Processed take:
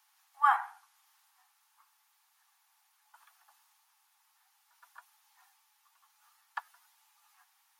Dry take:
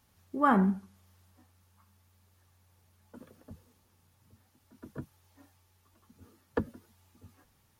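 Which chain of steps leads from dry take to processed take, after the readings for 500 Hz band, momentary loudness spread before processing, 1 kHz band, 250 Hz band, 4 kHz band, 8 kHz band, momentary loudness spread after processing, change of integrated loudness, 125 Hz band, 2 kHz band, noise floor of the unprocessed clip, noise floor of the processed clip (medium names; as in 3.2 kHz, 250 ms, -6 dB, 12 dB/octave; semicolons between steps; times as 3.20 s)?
-23.0 dB, 22 LU, +1.5 dB, under -40 dB, +1.5 dB, no reading, 17 LU, -1.0 dB, under -40 dB, +1.5 dB, -69 dBFS, -72 dBFS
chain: steep high-pass 750 Hz 96 dB/octave; trim +1.5 dB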